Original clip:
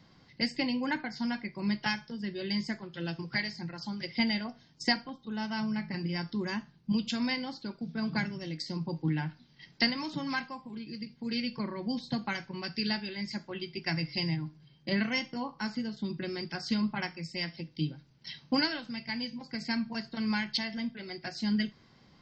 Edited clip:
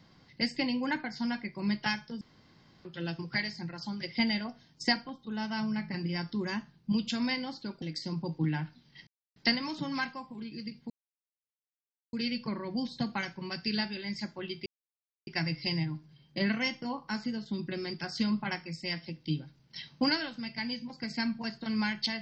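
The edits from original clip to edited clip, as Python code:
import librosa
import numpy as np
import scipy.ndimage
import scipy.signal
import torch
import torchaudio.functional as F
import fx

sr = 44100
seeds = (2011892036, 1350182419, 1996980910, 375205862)

y = fx.edit(x, sr, fx.room_tone_fill(start_s=2.21, length_s=0.64),
    fx.cut(start_s=7.82, length_s=0.64),
    fx.insert_silence(at_s=9.71, length_s=0.29),
    fx.insert_silence(at_s=11.25, length_s=1.23),
    fx.insert_silence(at_s=13.78, length_s=0.61), tone=tone)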